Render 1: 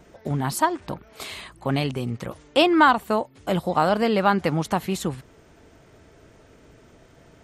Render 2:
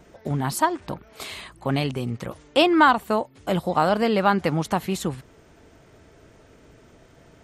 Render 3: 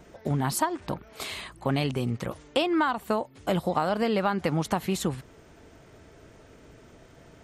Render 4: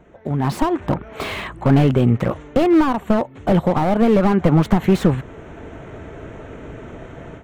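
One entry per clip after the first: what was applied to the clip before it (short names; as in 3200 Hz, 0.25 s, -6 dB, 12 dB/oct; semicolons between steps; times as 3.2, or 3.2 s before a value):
nothing audible
compressor 10:1, threshold -21 dBFS, peak gain reduction 11 dB
Wiener smoothing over 9 samples; AGC gain up to 15 dB; slew limiter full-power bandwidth 97 Hz; gain +2 dB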